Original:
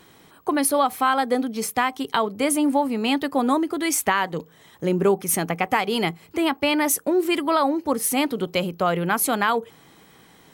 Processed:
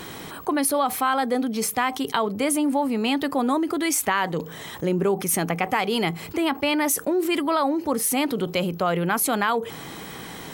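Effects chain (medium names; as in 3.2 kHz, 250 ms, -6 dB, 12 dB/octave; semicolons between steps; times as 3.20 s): level flattener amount 50%; trim -4 dB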